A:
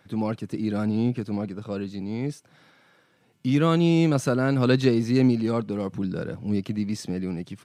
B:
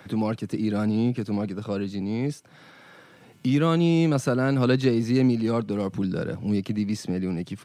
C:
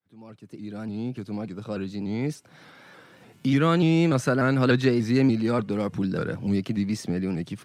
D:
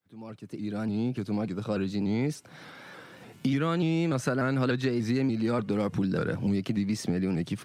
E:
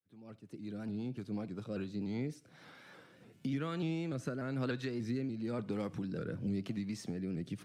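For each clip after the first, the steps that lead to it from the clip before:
three bands compressed up and down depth 40%
fade-in on the opening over 2.49 s; dynamic bell 1.7 kHz, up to +6 dB, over -45 dBFS, Q 1.7; vibrato with a chosen wave saw up 3.4 Hz, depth 100 cents
compression 6:1, threshold -27 dBFS, peak gain reduction 11 dB; trim +3 dB
rotary cabinet horn 5.5 Hz, later 1 Hz, at 1.49 s; on a send at -20 dB: reverberation RT60 0.40 s, pre-delay 43 ms; on the sum: trim -8.5 dB

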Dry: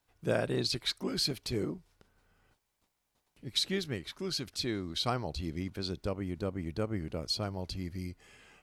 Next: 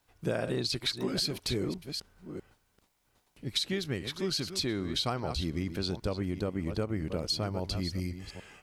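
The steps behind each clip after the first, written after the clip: chunks repeated in reverse 400 ms, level -11.5 dB; compression, threshold -33 dBFS, peak gain reduction 8.5 dB; trim +5.5 dB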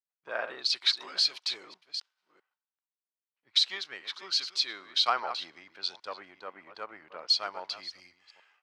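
waveshaping leveller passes 1; Chebyshev band-pass 990–4700 Hz, order 2; three bands expanded up and down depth 100%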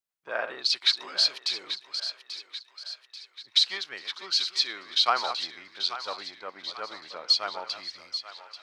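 thinning echo 837 ms, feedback 54%, high-pass 810 Hz, level -10.5 dB; trim +3 dB

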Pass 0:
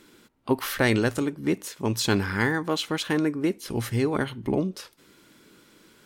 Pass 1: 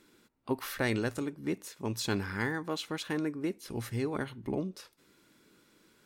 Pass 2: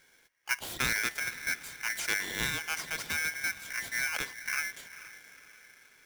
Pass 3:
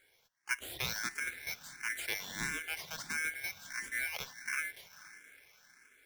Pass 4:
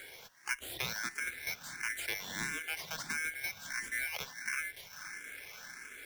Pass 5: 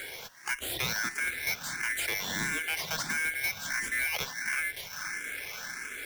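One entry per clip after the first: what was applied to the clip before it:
band-stop 3.1 kHz, Q 18; trim -8.5 dB
echo that smears into a reverb 457 ms, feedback 50%, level -15 dB; polarity switched at an audio rate 1.9 kHz
barber-pole phaser +1.5 Hz; trim -2.5 dB
three bands compressed up and down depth 70%
in parallel at +2 dB: peak limiter -25.5 dBFS, peak gain reduction 9 dB; on the sum: saturation -25.5 dBFS, distortion -13 dB; trim +2.5 dB

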